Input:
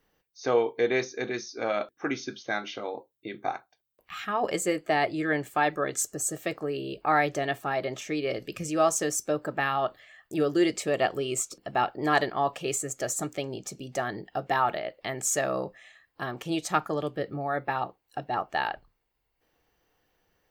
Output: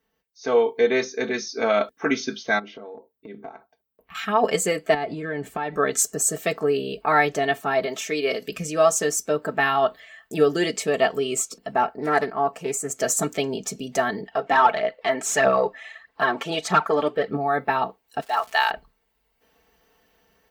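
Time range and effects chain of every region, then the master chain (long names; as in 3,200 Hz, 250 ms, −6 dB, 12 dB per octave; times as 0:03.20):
0:02.59–0:04.15: drawn EQ curve 480 Hz 0 dB, 7,000 Hz −18 dB, 14,000 Hz −7 dB + downward compressor 4 to 1, threshold −45 dBFS + floating-point word with a short mantissa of 8 bits
0:04.94–0:05.77: spectral tilt −2 dB per octave + downward compressor 10 to 1, threshold −30 dBFS
0:07.85–0:08.48: high-pass filter 330 Hz 6 dB per octave + high-shelf EQ 8,400 Hz +7 dB
0:11.73–0:12.89: parametric band 3,500 Hz −14 dB 0.59 octaves + highs frequency-modulated by the lows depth 0.22 ms
0:14.22–0:17.37: phase shifter 1.6 Hz, delay 3.8 ms + mid-hump overdrive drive 12 dB, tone 1,800 Hz, clips at −10.5 dBFS
0:18.20–0:18.69: high-pass filter 640 Hz + spectral tilt +2 dB per octave + surface crackle 450 per second −41 dBFS
whole clip: high-pass filter 42 Hz; comb filter 4.5 ms, depth 69%; automatic gain control gain up to 12.5 dB; level −5 dB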